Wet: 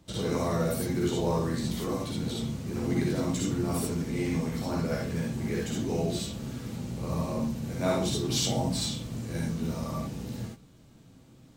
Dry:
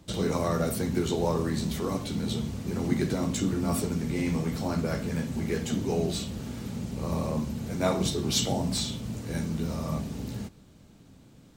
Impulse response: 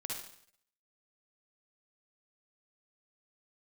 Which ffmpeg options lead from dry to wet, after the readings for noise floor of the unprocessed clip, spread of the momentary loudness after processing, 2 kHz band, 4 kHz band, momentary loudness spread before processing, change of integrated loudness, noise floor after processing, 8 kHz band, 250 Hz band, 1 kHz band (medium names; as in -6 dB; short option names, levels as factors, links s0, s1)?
-54 dBFS, 8 LU, -1.0 dB, -1.0 dB, 8 LU, -1.0 dB, -55 dBFS, -1.0 dB, -1.0 dB, -1.0 dB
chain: -filter_complex "[1:a]atrim=start_sample=2205,atrim=end_sample=3969[s0];[0:a][s0]afir=irnorm=-1:irlink=0"